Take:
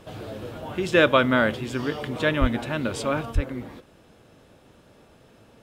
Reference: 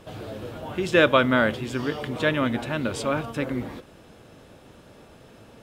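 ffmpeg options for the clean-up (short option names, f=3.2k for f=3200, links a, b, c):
-filter_complex "[0:a]asplit=3[a][b][c];[a]afade=t=out:st=2.4:d=0.02[d];[b]highpass=f=140:w=0.5412,highpass=f=140:w=1.3066,afade=t=in:st=2.4:d=0.02,afade=t=out:st=2.52:d=0.02[e];[c]afade=t=in:st=2.52:d=0.02[f];[d][e][f]amix=inputs=3:normalize=0,asplit=3[g][h][i];[g]afade=t=out:st=3.34:d=0.02[j];[h]highpass=f=140:w=0.5412,highpass=f=140:w=1.3066,afade=t=in:st=3.34:d=0.02,afade=t=out:st=3.46:d=0.02[k];[i]afade=t=in:st=3.46:d=0.02[l];[j][k][l]amix=inputs=3:normalize=0,asetnsamples=n=441:p=0,asendcmd='3.35 volume volume 4.5dB',volume=0dB"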